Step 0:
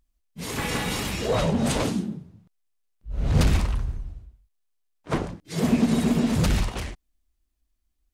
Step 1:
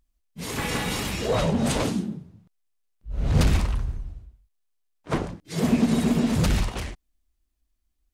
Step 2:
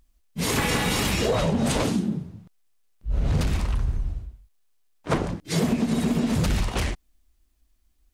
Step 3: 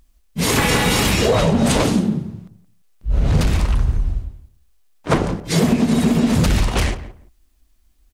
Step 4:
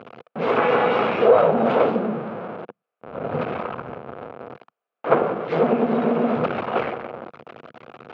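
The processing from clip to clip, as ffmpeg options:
-af anull
-af "acompressor=threshold=-28dB:ratio=12,volume=8.5dB"
-filter_complex "[0:a]asplit=2[a][b];[b]adelay=172,lowpass=f=1.2k:p=1,volume=-13dB,asplit=2[c][d];[d]adelay=172,lowpass=f=1.2k:p=1,volume=0.19[e];[a][c][e]amix=inputs=3:normalize=0,volume=7dB"
-af "aeval=exprs='val(0)+0.5*0.112*sgn(val(0))':c=same,aeval=exprs='0.708*(cos(1*acos(clip(val(0)/0.708,-1,1)))-cos(1*PI/2))+0.316*(cos(2*acos(clip(val(0)/0.708,-1,1)))-cos(2*PI/2))':c=same,highpass=f=180:w=0.5412,highpass=f=180:w=1.3066,equalizer=f=180:t=q:w=4:g=-9,equalizer=f=290:t=q:w=4:g=-7,equalizer=f=490:t=q:w=4:g=8,equalizer=f=700:t=q:w=4:g=6,equalizer=f=1.3k:t=q:w=4:g=6,equalizer=f=1.9k:t=q:w=4:g=-8,lowpass=f=2.3k:w=0.5412,lowpass=f=2.3k:w=1.3066,volume=-4.5dB"

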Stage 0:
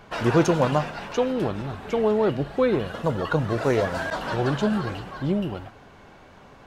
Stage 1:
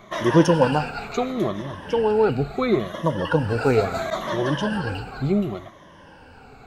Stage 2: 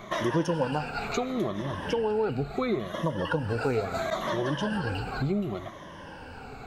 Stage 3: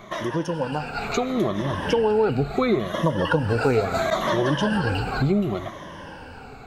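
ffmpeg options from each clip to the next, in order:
-af "afftfilt=real='re*pow(10,14/40*sin(2*PI*(1.2*log(max(b,1)*sr/1024/100)/log(2)-(-0.72)*(pts-256)/sr)))':imag='im*pow(10,14/40*sin(2*PI*(1.2*log(max(b,1)*sr/1024/100)/log(2)-(-0.72)*(pts-256)/sr)))':win_size=1024:overlap=0.75"
-af "acompressor=threshold=-32dB:ratio=3,volume=3.5dB"
-af "dynaudnorm=f=300:g=7:m=7dB"

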